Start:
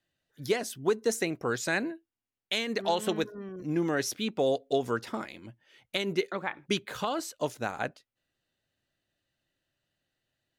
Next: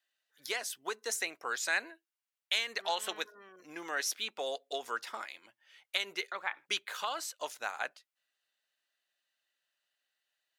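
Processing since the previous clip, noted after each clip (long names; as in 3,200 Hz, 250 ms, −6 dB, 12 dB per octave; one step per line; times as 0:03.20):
high-pass filter 970 Hz 12 dB per octave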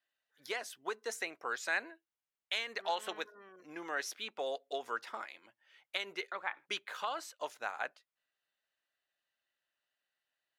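high-shelf EQ 3,300 Hz −11 dB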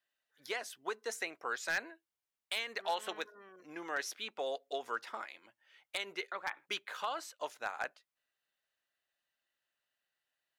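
wave folding −25 dBFS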